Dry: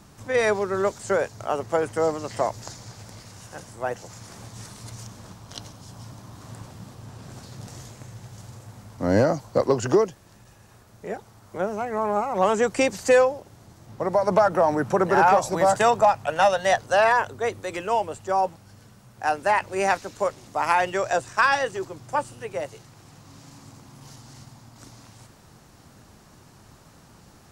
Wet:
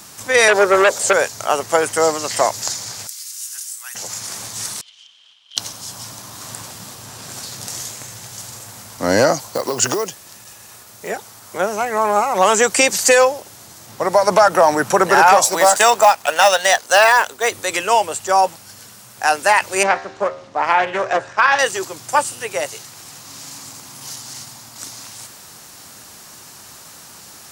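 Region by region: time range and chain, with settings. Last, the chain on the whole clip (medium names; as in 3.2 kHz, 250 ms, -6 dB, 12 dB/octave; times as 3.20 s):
0.48–1.13 s: peaking EQ 540 Hz +14.5 dB 0.92 oct + transformer saturation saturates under 1.1 kHz
3.07–3.95 s: high-pass 1.1 kHz 24 dB/octave + differentiator
4.81–5.57 s: band-pass filter 3.1 kHz, Q 13 + waveshaping leveller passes 1 + distance through air 70 m
9.46–11.10 s: band-stop 1.6 kHz, Q 24 + compression 10:1, threshold -22 dBFS + short-mantissa float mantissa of 4-bit
15.44–17.52 s: companding laws mixed up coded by A + peaking EQ 120 Hz -13 dB 0.94 oct
19.83–21.59 s: tape spacing loss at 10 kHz 32 dB + de-hum 77.12 Hz, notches 32 + loudspeaker Doppler distortion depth 0.25 ms
whole clip: tilt EQ +3.5 dB/octave; loudness maximiser +10.5 dB; trim -1 dB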